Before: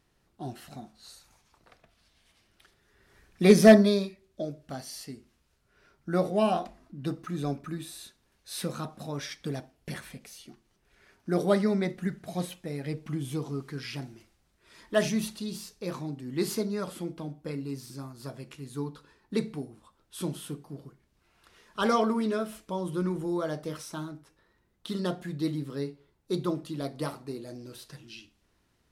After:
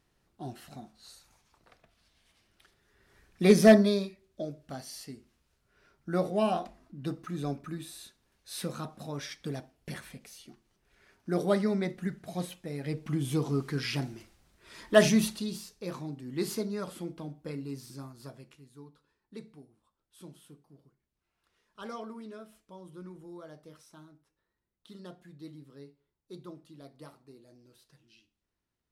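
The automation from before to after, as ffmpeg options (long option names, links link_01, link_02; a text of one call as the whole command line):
ffmpeg -i in.wav -af "volume=5dB,afade=type=in:start_time=12.71:duration=0.9:silence=0.421697,afade=type=out:start_time=15.13:duration=0.51:silence=0.398107,afade=type=out:start_time=18.04:duration=0.66:silence=0.223872" out.wav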